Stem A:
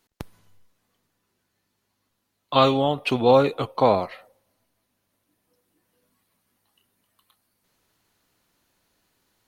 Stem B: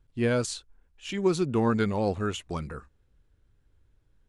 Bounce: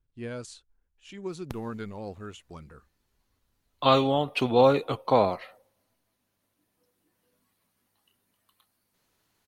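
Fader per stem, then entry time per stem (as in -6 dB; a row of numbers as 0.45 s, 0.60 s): -3.0 dB, -11.5 dB; 1.30 s, 0.00 s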